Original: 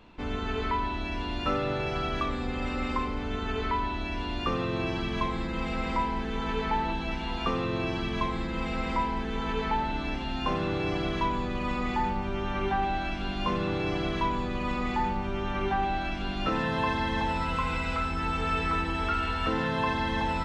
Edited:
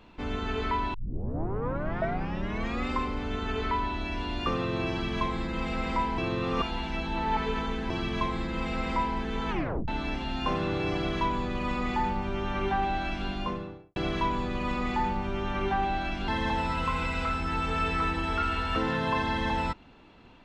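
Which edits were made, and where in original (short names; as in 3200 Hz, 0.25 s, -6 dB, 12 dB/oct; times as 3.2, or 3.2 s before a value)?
0.94 tape start 1.94 s
6.18–7.9 reverse
9.5 tape stop 0.38 s
13.21–13.96 studio fade out
16.28–16.99 cut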